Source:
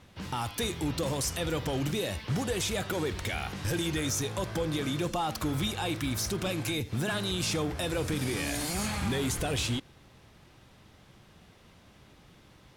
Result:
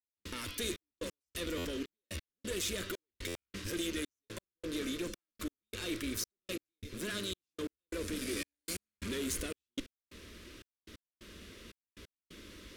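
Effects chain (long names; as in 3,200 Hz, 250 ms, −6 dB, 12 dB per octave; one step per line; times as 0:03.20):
reversed playback
downward compressor, threshold −38 dBFS, peak gain reduction 11.5 dB
reversed playback
asymmetric clip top −45.5 dBFS
phaser with its sweep stopped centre 330 Hz, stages 4
gate pattern "...xxxxxx...x" 178 BPM −60 dB
buffer that repeats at 0:01.57/0:03.27, samples 512, times 6
level +8.5 dB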